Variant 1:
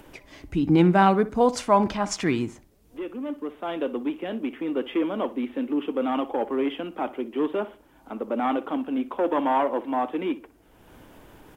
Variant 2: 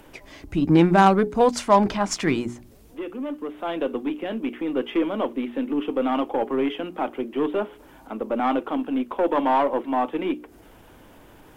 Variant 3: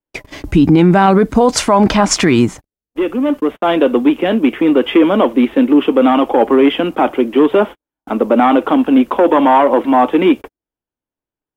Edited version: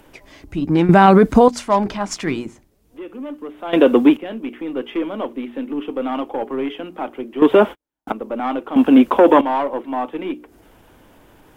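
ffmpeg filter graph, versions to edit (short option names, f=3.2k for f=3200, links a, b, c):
-filter_complex "[2:a]asplit=4[a][b][c][d];[1:a]asplit=6[e][f][g][h][i][j];[e]atrim=end=0.892[k];[a]atrim=start=0.888:end=1.482[l];[f]atrim=start=1.478:end=2.472[m];[0:a]atrim=start=2.468:end=3.132[n];[g]atrim=start=3.128:end=3.732[o];[b]atrim=start=3.728:end=4.172[p];[h]atrim=start=4.168:end=7.422[q];[c]atrim=start=7.418:end=8.122[r];[i]atrim=start=8.118:end=8.762[s];[d]atrim=start=8.758:end=9.412[t];[j]atrim=start=9.408[u];[k][l]acrossfade=d=0.004:c1=hsin:c2=hsin[v];[v][m]acrossfade=d=0.004:c1=hsin:c2=hsin[w];[w][n]acrossfade=d=0.004:c1=hsin:c2=hsin[x];[x][o]acrossfade=d=0.004:c1=hsin:c2=hsin[y];[y][p]acrossfade=d=0.004:c1=hsin:c2=hsin[z];[z][q]acrossfade=d=0.004:c1=hsin:c2=hsin[aa];[aa][r]acrossfade=d=0.004:c1=hsin:c2=hsin[ab];[ab][s]acrossfade=d=0.004:c1=hsin:c2=hsin[ac];[ac][t]acrossfade=d=0.004:c1=hsin:c2=hsin[ad];[ad][u]acrossfade=d=0.004:c1=hsin:c2=hsin"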